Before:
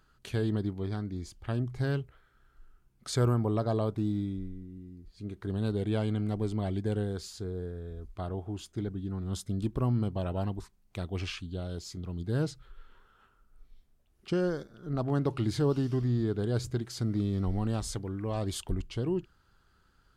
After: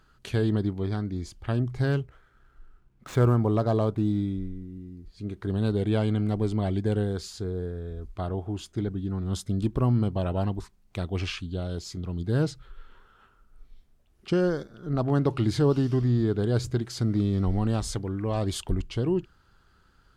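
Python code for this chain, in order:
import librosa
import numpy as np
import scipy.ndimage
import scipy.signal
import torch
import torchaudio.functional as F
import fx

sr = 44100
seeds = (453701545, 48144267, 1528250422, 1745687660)

y = fx.median_filter(x, sr, points=9, at=(1.92, 4.08))
y = fx.high_shelf(y, sr, hz=9000.0, db=-5.5)
y = F.gain(torch.from_numpy(y), 5.0).numpy()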